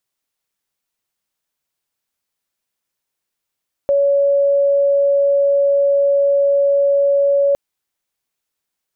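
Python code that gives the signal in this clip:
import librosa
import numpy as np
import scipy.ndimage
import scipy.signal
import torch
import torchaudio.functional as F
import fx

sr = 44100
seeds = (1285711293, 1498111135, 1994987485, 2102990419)

y = 10.0 ** (-11.0 / 20.0) * np.sin(2.0 * np.pi * (562.0 * (np.arange(round(3.66 * sr)) / sr)))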